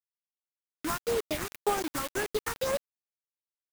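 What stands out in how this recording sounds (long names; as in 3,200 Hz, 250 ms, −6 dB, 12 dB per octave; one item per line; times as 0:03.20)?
aliases and images of a low sample rate 4,300 Hz, jitter 20%
phaser sweep stages 4, 1.9 Hz, lowest notch 540–4,900 Hz
a quantiser's noise floor 6 bits, dither none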